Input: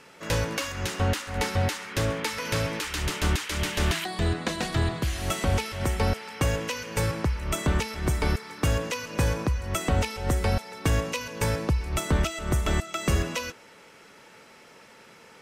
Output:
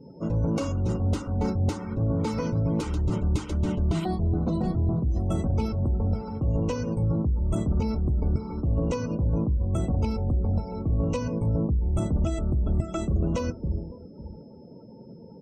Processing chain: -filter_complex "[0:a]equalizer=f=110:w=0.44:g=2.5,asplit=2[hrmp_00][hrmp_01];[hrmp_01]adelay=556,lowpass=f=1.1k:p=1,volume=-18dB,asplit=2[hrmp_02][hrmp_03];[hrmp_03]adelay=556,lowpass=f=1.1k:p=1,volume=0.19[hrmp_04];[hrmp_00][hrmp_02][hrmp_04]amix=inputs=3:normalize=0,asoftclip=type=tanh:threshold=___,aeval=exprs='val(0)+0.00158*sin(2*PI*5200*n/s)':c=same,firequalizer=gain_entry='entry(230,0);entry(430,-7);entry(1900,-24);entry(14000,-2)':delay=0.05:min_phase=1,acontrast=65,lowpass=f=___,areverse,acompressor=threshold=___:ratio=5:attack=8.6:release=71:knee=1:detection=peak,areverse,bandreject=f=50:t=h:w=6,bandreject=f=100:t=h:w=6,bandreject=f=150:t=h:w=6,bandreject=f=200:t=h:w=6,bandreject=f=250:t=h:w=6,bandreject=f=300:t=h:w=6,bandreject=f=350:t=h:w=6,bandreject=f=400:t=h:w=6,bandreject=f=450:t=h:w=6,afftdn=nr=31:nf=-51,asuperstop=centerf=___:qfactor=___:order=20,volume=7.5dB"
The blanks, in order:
-17dB, 7.2k, -31dB, 1700, 8